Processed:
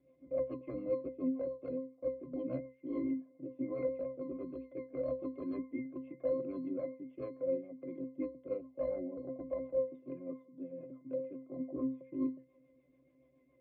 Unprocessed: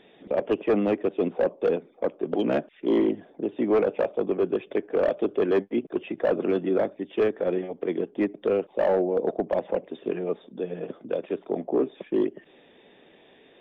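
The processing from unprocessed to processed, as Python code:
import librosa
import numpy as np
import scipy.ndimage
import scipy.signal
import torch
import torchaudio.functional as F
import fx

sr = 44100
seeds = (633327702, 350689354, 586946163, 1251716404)

y = fx.octave_resonator(x, sr, note='C', decay_s=0.34)
y = fx.rotary(y, sr, hz=7.0)
y = y * librosa.db_to_amplitude(4.5)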